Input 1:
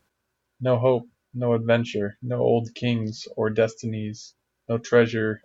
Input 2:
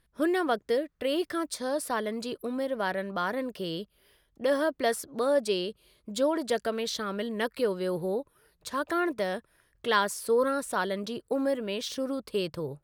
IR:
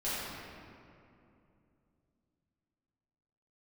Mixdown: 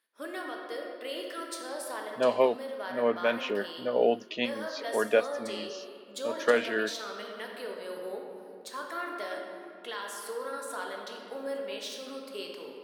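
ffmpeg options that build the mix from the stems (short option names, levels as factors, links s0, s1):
-filter_complex "[0:a]lowpass=3900,adelay=1550,volume=1.19[s0];[1:a]highpass=f=310:p=1,alimiter=limit=0.0891:level=0:latency=1:release=302,volume=0.422,asplit=3[s1][s2][s3];[s2]volume=0.631[s4];[s3]apad=whole_len=308575[s5];[s0][s5]sidechaincompress=threshold=0.0112:ratio=8:attack=16:release=152[s6];[2:a]atrim=start_sample=2205[s7];[s4][s7]afir=irnorm=-1:irlink=0[s8];[s6][s1][s8]amix=inputs=3:normalize=0,highpass=f=210:w=0.5412,highpass=f=210:w=1.3066,lowshelf=f=440:g=-10.5"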